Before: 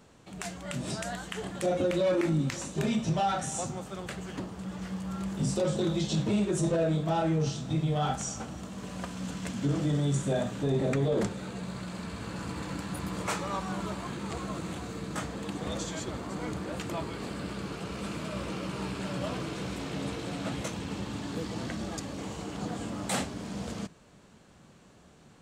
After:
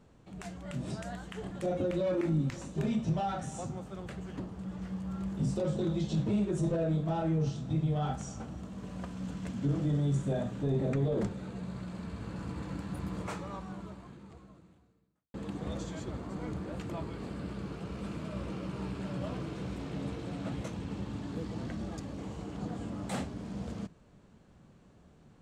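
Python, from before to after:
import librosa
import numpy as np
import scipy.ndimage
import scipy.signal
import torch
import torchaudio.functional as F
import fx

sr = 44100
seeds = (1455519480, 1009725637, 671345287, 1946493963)

y = fx.edit(x, sr, fx.fade_out_span(start_s=13.16, length_s=2.18, curve='qua'), tone=tone)
y = fx.tilt_eq(y, sr, slope=-2.0)
y = y * 10.0 ** (-6.5 / 20.0)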